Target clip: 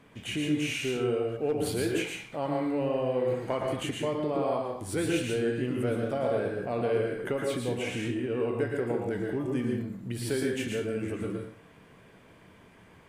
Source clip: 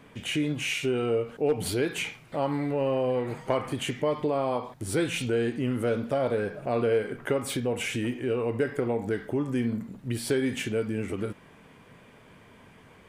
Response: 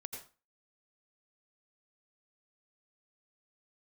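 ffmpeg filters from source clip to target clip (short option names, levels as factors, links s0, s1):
-filter_complex "[0:a]asettb=1/sr,asplit=3[s0][s1][s2];[s0]atrim=end=7.364[s3];[s1]atrim=start=7.36:end=8.36,asetpts=PTS-STARTPTS,afade=t=in:d=0.004:c=qsin,afade=t=out:st=0.996:d=0.004:c=qsin,highshelf=f=7700:g=-9[s4];[s2]atrim=start=8.356[s5];[s3][s4]acrossfade=d=0.004:c1=hsin:c2=qsin[s6];[s6][s5]acrossfade=d=0.004:c1=qsin:c2=hsin[s7];[1:a]atrim=start_sample=2205,asetrate=33075,aresample=44100[s8];[s7][s8]afir=irnorm=-1:irlink=0,volume=0.891"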